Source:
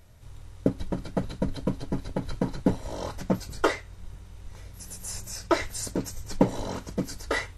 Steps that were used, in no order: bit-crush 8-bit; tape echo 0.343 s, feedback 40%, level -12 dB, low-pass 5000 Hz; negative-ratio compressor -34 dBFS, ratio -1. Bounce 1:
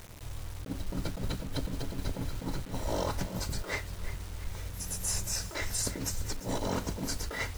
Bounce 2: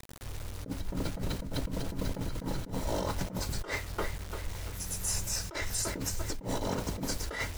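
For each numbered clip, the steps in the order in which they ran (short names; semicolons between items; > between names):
negative-ratio compressor > tape echo > bit-crush; tape echo > bit-crush > negative-ratio compressor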